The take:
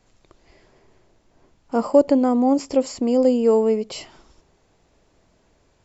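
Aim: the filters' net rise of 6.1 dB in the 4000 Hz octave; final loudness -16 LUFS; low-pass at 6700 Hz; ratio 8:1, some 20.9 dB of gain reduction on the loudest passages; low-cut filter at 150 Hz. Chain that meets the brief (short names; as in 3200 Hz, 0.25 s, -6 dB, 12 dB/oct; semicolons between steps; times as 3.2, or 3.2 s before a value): HPF 150 Hz; LPF 6700 Hz; bell 4000 Hz +9 dB; compressor 8:1, threshold -31 dBFS; gain +19 dB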